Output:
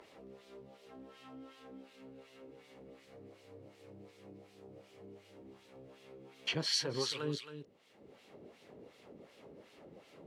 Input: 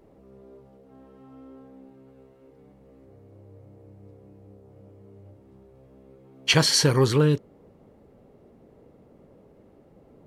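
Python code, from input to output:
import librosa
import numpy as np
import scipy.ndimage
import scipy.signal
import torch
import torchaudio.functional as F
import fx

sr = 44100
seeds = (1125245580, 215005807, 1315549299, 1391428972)

p1 = fx.dynamic_eq(x, sr, hz=7700.0, q=0.74, threshold_db=-34.0, ratio=4.0, max_db=-5)
p2 = fx.filter_lfo_bandpass(p1, sr, shape='sine', hz=2.7, low_hz=290.0, high_hz=3300.0, q=0.9)
p3 = p2 + fx.echo_single(p2, sr, ms=270, db=-12.0, dry=0)
p4 = fx.band_squash(p3, sr, depth_pct=70)
y = F.gain(torch.from_numpy(p4), -1.0).numpy()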